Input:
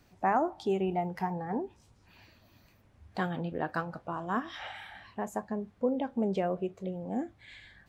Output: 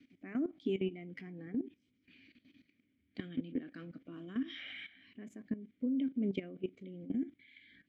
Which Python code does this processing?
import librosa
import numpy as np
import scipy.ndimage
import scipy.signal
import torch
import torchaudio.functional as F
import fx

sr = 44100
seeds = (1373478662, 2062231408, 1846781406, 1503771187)

y = fx.vowel_filter(x, sr, vowel='i')
y = fx.level_steps(y, sr, step_db=15)
y = y * 10.0 ** (13.0 / 20.0)